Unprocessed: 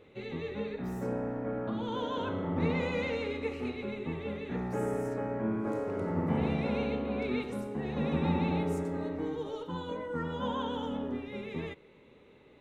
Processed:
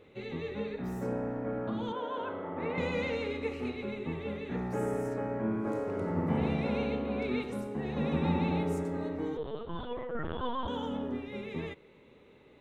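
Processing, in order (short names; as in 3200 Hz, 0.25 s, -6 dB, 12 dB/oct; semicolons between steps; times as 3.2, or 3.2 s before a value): 1.92–2.78 three-band isolator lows -14 dB, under 340 Hz, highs -18 dB, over 2800 Hz; 9.37–10.68 LPC vocoder at 8 kHz pitch kept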